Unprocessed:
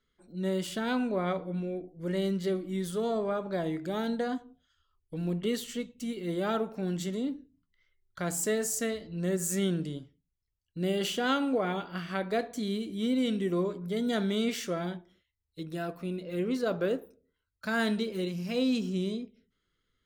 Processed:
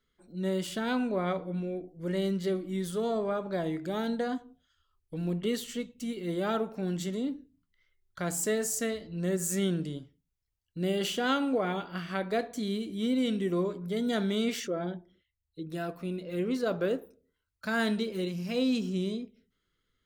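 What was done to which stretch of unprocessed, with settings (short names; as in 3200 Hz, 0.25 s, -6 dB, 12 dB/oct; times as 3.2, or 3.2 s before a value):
14.6–15.7 formant sharpening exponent 1.5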